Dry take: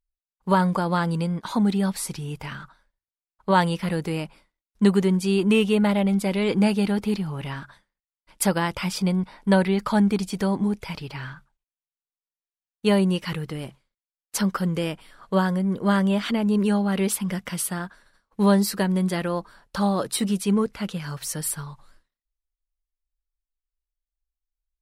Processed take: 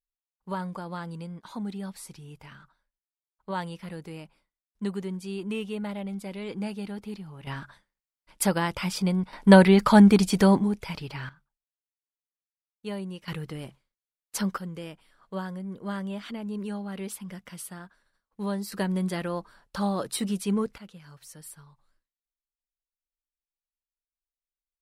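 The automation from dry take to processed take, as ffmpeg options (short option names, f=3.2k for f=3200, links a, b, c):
-af "asetnsamples=n=441:p=0,asendcmd='7.47 volume volume -2.5dB;9.33 volume volume 5dB;10.59 volume volume -2dB;11.29 volume volume -15dB;13.28 volume volume -5dB;14.58 volume volume -12.5dB;18.72 volume volume -5dB;20.78 volume volume -17dB',volume=-13dB"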